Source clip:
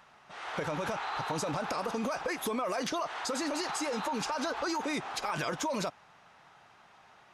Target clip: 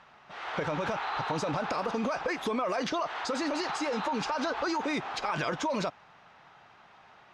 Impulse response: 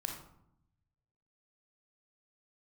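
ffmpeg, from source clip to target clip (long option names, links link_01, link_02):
-af "lowpass=4800,volume=2.5dB"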